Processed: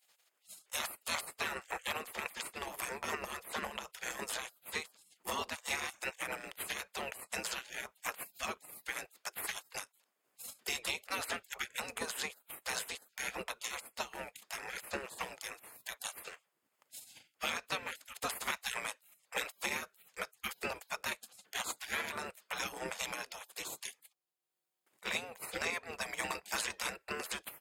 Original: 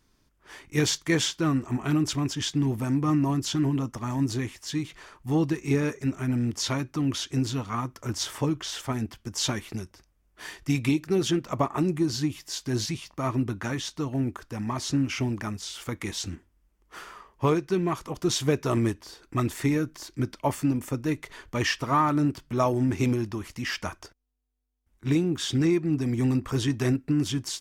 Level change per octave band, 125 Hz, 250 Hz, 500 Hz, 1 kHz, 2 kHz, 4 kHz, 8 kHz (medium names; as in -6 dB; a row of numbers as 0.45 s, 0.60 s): -32.0 dB, -27.5 dB, -15.0 dB, -9.0 dB, -2.0 dB, -8.0 dB, -6.5 dB